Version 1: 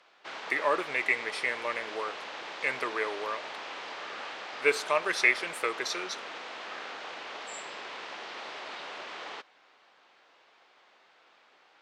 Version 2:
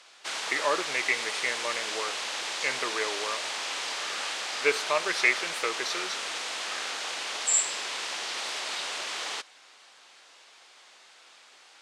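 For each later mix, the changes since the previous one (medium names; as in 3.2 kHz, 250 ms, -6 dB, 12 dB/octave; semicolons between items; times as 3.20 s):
background: remove tape spacing loss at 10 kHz 31 dB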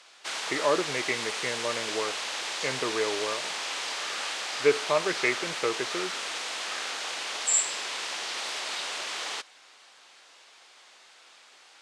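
speech: add tilt EQ -4.5 dB/octave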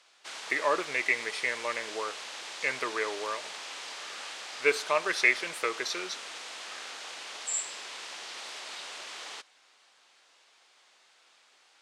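speech: add tilt EQ +4.5 dB/octave; background -8.0 dB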